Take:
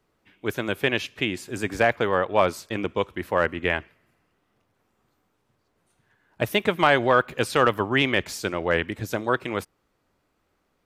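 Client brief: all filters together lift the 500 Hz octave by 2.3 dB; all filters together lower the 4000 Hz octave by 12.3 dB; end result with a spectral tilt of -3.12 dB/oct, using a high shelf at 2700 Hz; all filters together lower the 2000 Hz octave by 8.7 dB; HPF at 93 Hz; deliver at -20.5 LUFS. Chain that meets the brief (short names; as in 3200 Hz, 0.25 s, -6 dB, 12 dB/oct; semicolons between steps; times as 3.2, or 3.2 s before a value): HPF 93 Hz; bell 500 Hz +3.5 dB; bell 2000 Hz -7 dB; high shelf 2700 Hz -8 dB; bell 4000 Hz -7.5 dB; gain +4.5 dB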